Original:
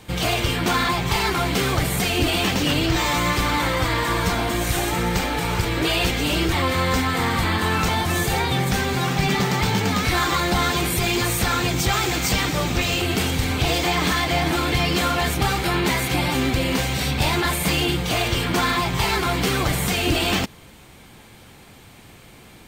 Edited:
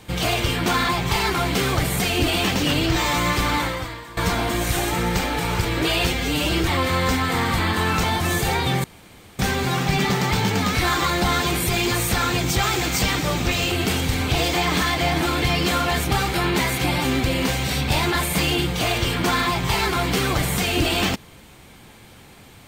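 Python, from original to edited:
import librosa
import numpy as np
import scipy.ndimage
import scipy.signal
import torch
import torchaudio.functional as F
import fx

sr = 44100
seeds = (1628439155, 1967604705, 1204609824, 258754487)

y = fx.edit(x, sr, fx.fade_out_to(start_s=3.57, length_s=0.6, curve='qua', floor_db=-18.0),
    fx.stretch_span(start_s=6.07, length_s=0.3, factor=1.5),
    fx.insert_room_tone(at_s=8.69, length_s=0.55), tone=tone)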